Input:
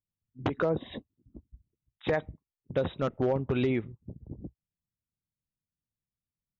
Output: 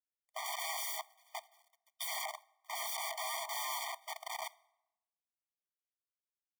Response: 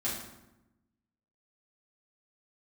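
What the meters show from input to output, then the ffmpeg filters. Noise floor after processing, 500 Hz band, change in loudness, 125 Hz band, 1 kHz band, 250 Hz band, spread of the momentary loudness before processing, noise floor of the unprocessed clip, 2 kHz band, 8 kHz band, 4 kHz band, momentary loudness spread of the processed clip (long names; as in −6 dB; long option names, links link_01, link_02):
below −85 dBFS, −19.0 dB, −8.5 dB, below −40 dB, 0.0 dB, below −40 dB, 17 LU, below −85 dBFS, −2.0 dB, can't be measured, +6.0 dB, 12 LU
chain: -filter_complex "[0:a]asplit=2[link_01][link_02];[link_02]highpass=frequency=720:poles=1,volume=35dB,asoftclip=type=tanh:threshold=-17.5dB[link_03];[link_01][link_03]amix=inputs=2:normalize=0,lowpass=frequency=3200:poles=1,volume=-6dB,aeval=exprs='(mod(35.5*val(0)+1,2)-1)/35.5':channel_layout=same,acrusher=bits=9:mix=0:aa=0.000001,asplit=2[link_04][link_05];[1:a]atrim=start_sample=2205[link_06];[link_05][link_06]afir=irnorm=-1:irlink=0,volume=-23.5dB[link_07];[link_04][link_07]amix=inputs=2:normalize=0,afftfilt=real='re*eq(mod(floor(b*sr/1024/610),2),1)':imag='im*eq(mod(floor(b*sr/1024/610),2),1)':win_size=1024:overlap=0.75"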